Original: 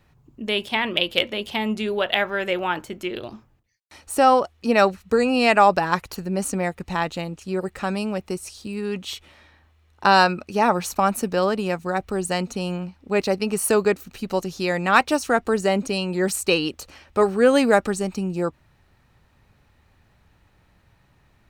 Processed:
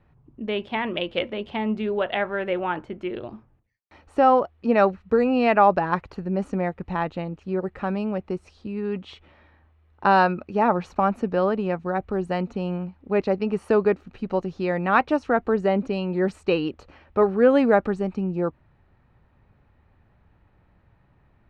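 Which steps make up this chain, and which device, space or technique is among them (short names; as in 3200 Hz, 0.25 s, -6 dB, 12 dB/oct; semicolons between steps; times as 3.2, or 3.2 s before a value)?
phone in a pocket (LPF 3300 Hz 12 dB/oct; high shelf 2300 Hz -12 dB)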